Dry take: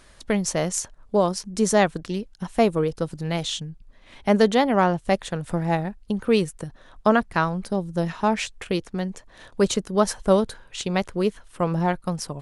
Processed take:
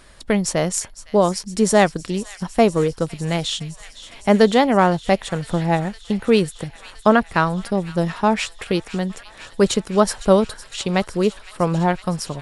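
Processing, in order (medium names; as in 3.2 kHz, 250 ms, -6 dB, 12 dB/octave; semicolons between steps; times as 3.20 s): band-stop 6.2 kHz, Q 13; feedback echo behind a high-pass 509 ms, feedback 82%, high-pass 2 kHz, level -15 dB; trim +4 dB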